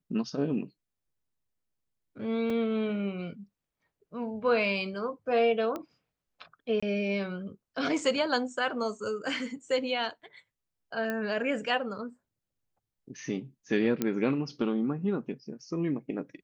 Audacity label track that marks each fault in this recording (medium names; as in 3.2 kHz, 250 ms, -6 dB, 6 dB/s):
2.500000	2.500000	dropout 2.8 ms
5.760000	5.760000	pop -22 dBFS
6.800000	6.830000	dropout 25 ms
11.100000	11.100000	pop -19 dBFS
14.020000	14.020000	pop -14 dBFS